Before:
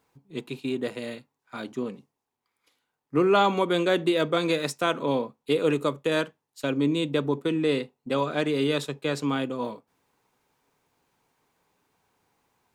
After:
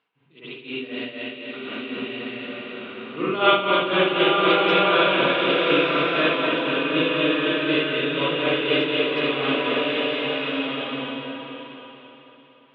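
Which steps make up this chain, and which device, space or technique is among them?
low-pass 5.9 kHz 12 dB/octave; harmonic-percussive split harmonic +4 dB; bass shelf 470 Hz -11.5 dB; combo amplifier with spring reverb and tremolo (spring tank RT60 3.3 s, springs 48/58 ms, chirp 35 ms, DRR -9 dB; tremolo 4 Hz, depth 72%; cabinet simulation 110–3800 Hz, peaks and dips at 510 Hz -3 dB, 860 Hz -6 dB, 2.9 kHz +9 dB); swelling reverb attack 1320 ms, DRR -1 dB; trim -2 dB

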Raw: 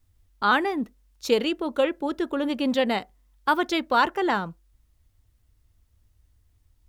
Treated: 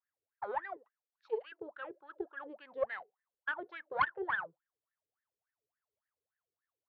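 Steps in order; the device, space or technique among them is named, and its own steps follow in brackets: 0.76–1.52 s: high-pass 800 Hz 12 dB/octave; wah-wah guitar rig (wah-wah 3.5 Hz 410–1800 Hz, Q 16; valve stage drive 23 dB, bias 0.65; cabinet simulation 110–4500 Hz, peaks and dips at 140 Hz +7 dB, 240 Hz -10 dB, 1.6 kHz +4 dB); trim +4 dB

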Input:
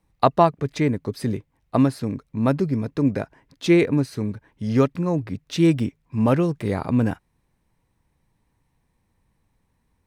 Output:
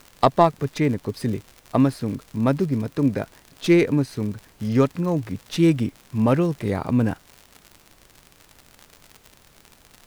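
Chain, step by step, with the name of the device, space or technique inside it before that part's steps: record under a worn stylus (tracing distortion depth 0.051 ms; crackle 83 per s -31 dBFS; pink noise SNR 32 dB)

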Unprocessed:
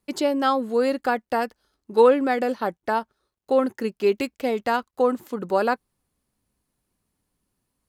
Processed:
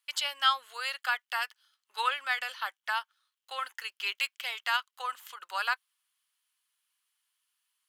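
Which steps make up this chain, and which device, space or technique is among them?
headphones lying on a table (high-pass 1.2 kHz 24 dB/octave; peaking EQ 3.1 kHz +10 dB 0.36 oct)

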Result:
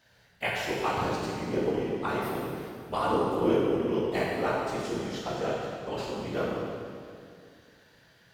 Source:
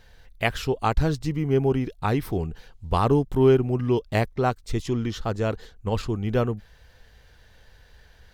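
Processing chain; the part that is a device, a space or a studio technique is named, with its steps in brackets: whispering ghost (whisper effect; high-pass 450 Hz 6 dB/octave; reverberation RT60 2.3 s, pre-delay 10 ms, DRR -4.5 dB); trim -7 dB

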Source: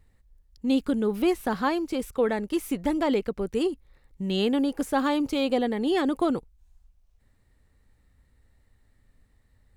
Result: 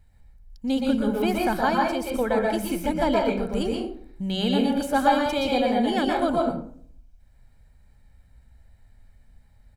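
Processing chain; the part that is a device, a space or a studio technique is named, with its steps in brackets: microphone above a desk (comb 1.3 ms, depth 54%; reverberation RT60 0.55 s, pre-delay 116 ms, DRR -1.5 dB)

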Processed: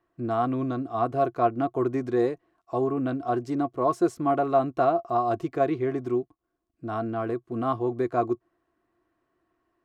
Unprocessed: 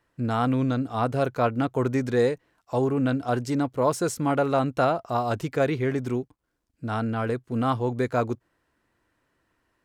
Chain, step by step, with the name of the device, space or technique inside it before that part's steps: inside a helmet (treble shelf 5.4 kHz -8.5 dB; small resonant body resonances 350/690/1100 Hz, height 15 dB, ringing for 55 ms); trim -7.5 dB

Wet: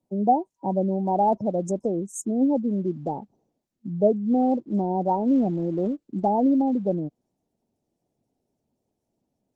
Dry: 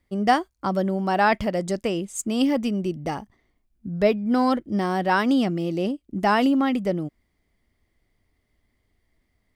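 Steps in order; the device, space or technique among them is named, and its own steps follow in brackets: 5.14–6.45 s: peaking EQ 4.6 kHz -5 dB 1.3 oct; FFT band-reject 960–5200 Hz; noise-suppressed video call (high-pass 130 Hz 24 dB/octave; spectral gate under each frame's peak -25 dB strong; Opus 16 kbps 48 kHz)

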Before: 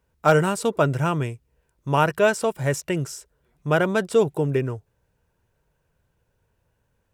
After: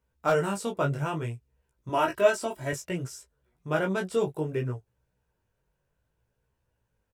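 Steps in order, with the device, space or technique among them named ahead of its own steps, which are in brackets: double-tracked vocal (doubling 16 ms -9 dB; chorus 0.61 Hz, delay 15 ms, depth 6.6 ms); 1.89–2.73 s: comb 3.1 ms, depth 71%; trim -4.5 dB

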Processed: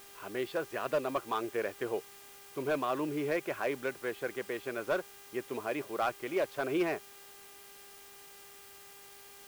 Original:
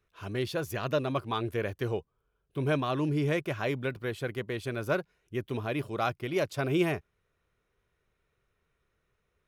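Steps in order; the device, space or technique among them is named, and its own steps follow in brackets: aircraft radio (band-pass 350–2400 Hz; hard clipper -23.5 dBFS, distortion -17 dB; mains buzz 400 Hz, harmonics 8, -59 dBFS -3 dB/octave; white noise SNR 18 dB)

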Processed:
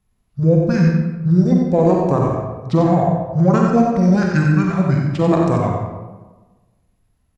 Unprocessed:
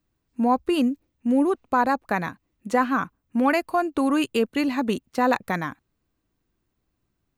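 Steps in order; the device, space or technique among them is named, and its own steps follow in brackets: monster voice (pitch shift -7 st; formant shift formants -3.5 st; bass shelf 130 Hz +6 dB; delay 92 ms -7 dB; reverberation RT60 1.2 s, pre-delay 38 ms, DRR 0 dB); trim +4 dB

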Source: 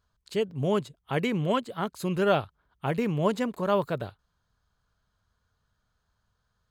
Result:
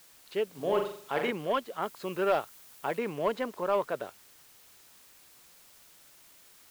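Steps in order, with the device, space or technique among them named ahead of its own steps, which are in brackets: tape answering machine (band-pass 380–3100 Hz; saturation -17.5 dBFS, distortion -18 dB; wow and flutter; white noise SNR 23 dB); 0.49–1.31 s: flutter echo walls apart 7.1 m, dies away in 0.52 s; 1.82–2.99 s: treble shelf 8.6 kHz +5.5 dB

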